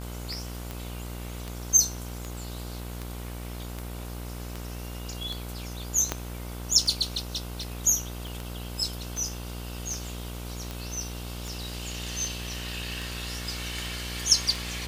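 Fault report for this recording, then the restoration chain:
mains buzz 60 Hz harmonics 26 −37 dBFS
scratch tick 78 rpm −19 dBFS
0:06.12: click −11 dBFS
0:08.27: click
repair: click removal
hum removal 60 Hz, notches 26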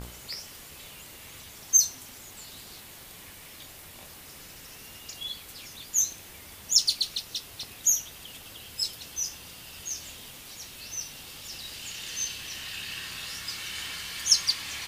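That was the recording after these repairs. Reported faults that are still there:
0:06.12: click
0:08.27: click

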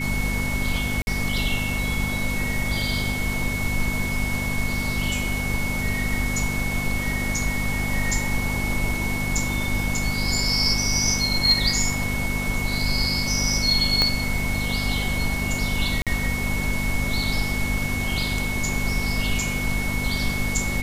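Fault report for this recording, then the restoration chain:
mains hum 50 Hz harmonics 5 −29 dBFS
whistle 2,200 Hz −28 dBFS
0:01.02–0:01.07: drop-out 51 ms
0:14.02: click −5 dBFS
0:16.02–0:16.07: drop-out 47 ms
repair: click removal
hum removal 50 Hz, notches 5
notch filter 2,200 Hz, Q 30
repair the gap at 0:01.02, 51 ms
repair the gap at 0:16.02, 47 ms

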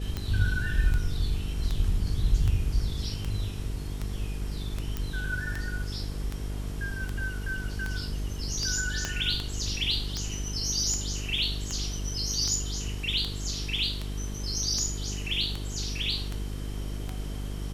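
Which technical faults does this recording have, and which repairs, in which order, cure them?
mains buzz 50 Hz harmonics 9 −34 dBFS
scratch tick 78 rpm −18 dBFS
0:04.97: click −17 dBFS
0:09.05: click −15 dBFS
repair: click removal
hum removal 50 Hz, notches 9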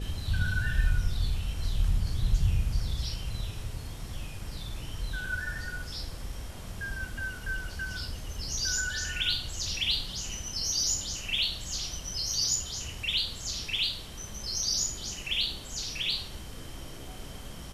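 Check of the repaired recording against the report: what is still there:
0:09.05: click

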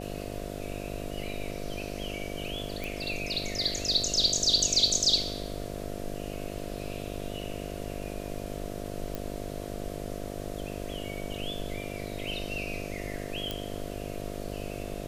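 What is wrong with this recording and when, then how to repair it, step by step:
mains buzz 50 Hz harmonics 14 −38 dBFS
0:02.84: click
0:09.15: click
0:13.51: click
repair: click removal
hum removal 50 Hz, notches 14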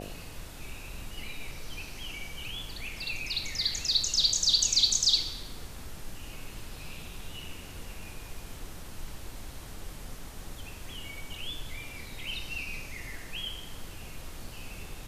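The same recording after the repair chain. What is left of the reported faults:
none of them is left

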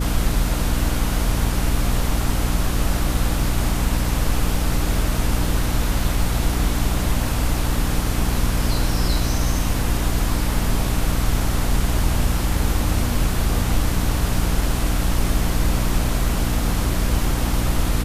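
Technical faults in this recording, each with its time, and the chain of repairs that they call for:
mains hum 60 Hz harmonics 5 −24 dBFS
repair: hum removal 60 Hz, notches 5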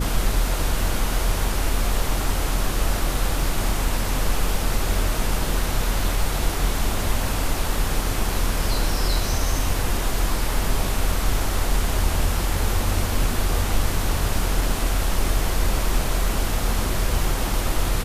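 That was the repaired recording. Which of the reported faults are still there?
none of them is left

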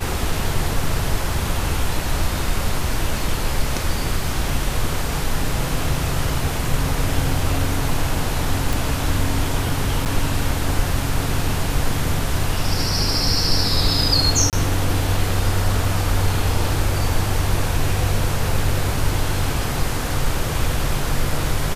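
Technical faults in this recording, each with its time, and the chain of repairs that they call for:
0:08.73: click
0:10.05–0:10.06: drop-out 8.8 ms
0:14.50–0:14.53: drop-out 28 ms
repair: click removal
repair the gap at 0:10.05, 8.8 ms
repair the gap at 0:14.50, 28 ms

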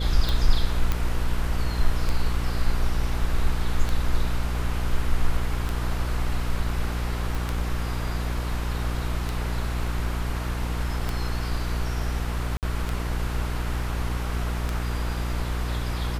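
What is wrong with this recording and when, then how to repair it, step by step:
mains hum 60 Hz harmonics 8 −28 dBFS
scratch tick 33 1/3 rpm
0:00.92: click −11 dBFS
0:07.35: click
0:12.57–0:12.63: drop-out 58 ms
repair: click removal
hum removal 60 Hz, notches 8
repair the gap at 0:12.57, 58 ms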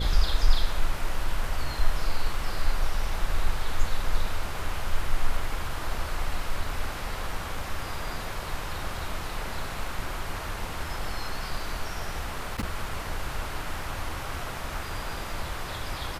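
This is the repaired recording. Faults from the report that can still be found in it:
none of them is left

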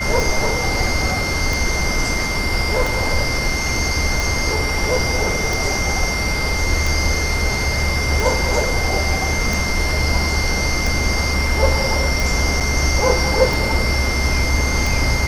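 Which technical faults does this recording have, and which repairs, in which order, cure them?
scratch tick 45 rpm
whistle 2,100 Hz −23 dBFS
0:12.60–0:12.61: drop-out 6.9 ms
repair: click removal
notch filter 2,100 Hz, Q 30
repair the gap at 0:12.60, 6.9 ms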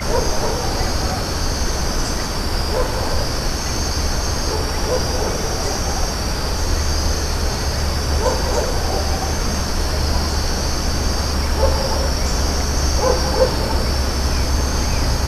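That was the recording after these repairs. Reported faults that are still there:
none of them is left

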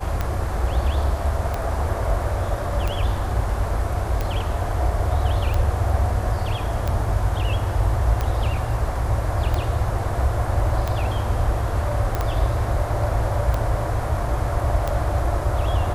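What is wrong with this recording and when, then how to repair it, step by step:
scratch tick 45 rpm −11 dBFS
0:12.15: click −11 dBFS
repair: click removal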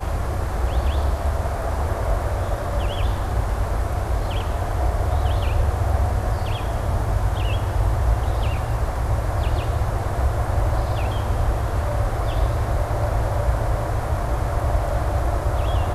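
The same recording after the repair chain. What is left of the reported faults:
0:12.15: click

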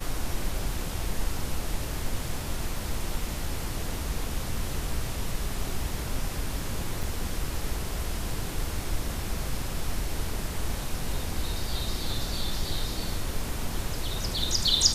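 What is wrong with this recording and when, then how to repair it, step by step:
0:07.03: drop-out 3.4 ms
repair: repair the gap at 0:07.03, 3.4 ms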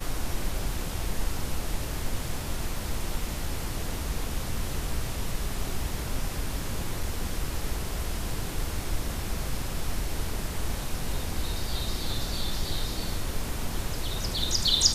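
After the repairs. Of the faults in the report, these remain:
none of them is left

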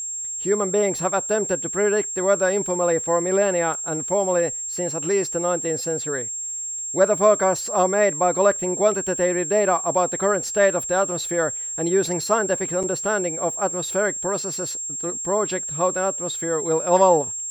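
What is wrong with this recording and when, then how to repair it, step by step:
whistle 7,500 Hz −27 dBFS
0:03.74: drop-out 2 ms
0:12.83–0:12.84: drop-out 6.6 ms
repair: notch filter 7,500 Hz, Q 30
repair the gap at 0:03.74, 2 ms
repair the gap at 0:12.83, 6.6 ms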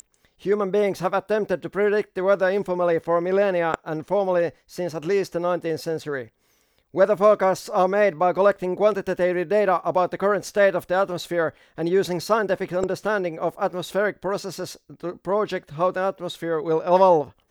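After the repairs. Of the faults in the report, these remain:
none of them is left

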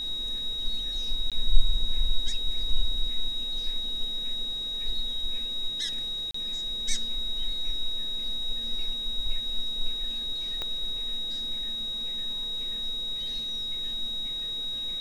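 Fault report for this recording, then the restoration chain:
whistle 3,800 Hz −30 dBFS
0:01.30–0:01.32: drop-out 17 ms
0:06.31–0:06.34: drop-out 34 ms
0:10.62: click −18 dBFS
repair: click removal
notch filter 3,800 Hz, Q 30
repair the gap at 0:01.30, 17 ms
repair the gap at 0:06.31, 34 ms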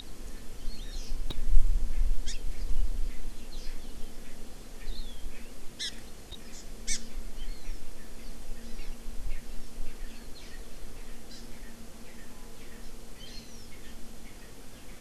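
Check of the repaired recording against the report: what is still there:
0:10.62: click

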